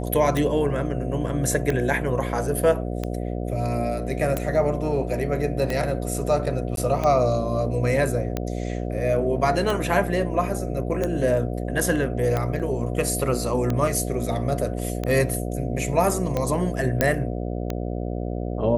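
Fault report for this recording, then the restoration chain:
mains buzz 60 Hz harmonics 12 −28 dBFS
scratch tick 45 rpm −12 dBFS
0:06.76–0:06.77: drop-out 12 ms
0:12.59–0:12.60: drop-out 7.5 ms
0:17.01: click −4 dBFS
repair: click removal
hum removal 60 Hz, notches 12
repair the gap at 0:06.76, 12 ms
repair the gap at 0:12.59, 7.5 ms

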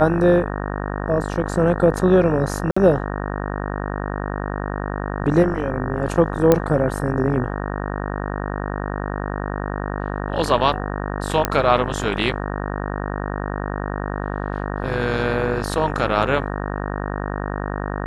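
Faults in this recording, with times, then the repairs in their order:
mains buzz 50 Hz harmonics 37 −26 dBFS
0:02.71–0:02.77: drop-out 55 ms
0:06.52: click −2 dBFS
0:11.45: click −2 dBFS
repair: click removal
hum removal 50 Hz, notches 37
repair the gap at 0:02.71, 55 ms

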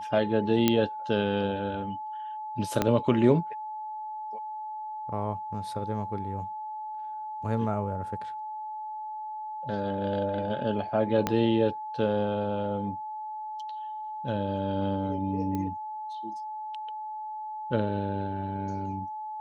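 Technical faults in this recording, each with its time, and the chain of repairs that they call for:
whistle 860 Hz −34 dBFS
0:00.68: click −8 dBFS
0:02.82: click −10 dBFS
0:11.27: click −11 dBFS
0:15.55: click −20 dBFS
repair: click removal
notch filter 860 Hz, Q 30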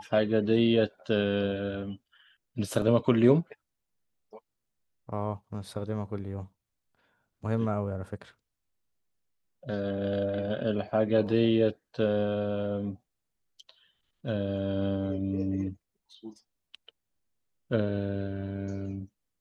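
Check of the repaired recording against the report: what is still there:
0:00.68: click
0:02.82: click
0:11.27: click

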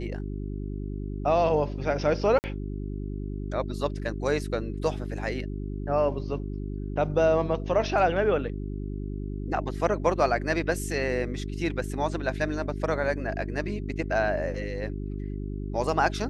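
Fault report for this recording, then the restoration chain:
mains hum 50 Hz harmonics 8 −33 dBFS
0:02.39–0:02.44: drop-out 49 ms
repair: hum removal 50 Hz, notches 8
repair the gap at 0:02.39, 49 ms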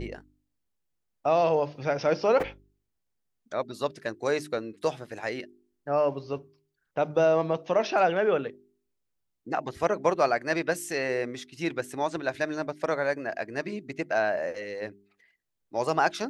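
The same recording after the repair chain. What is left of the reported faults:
none of them is left

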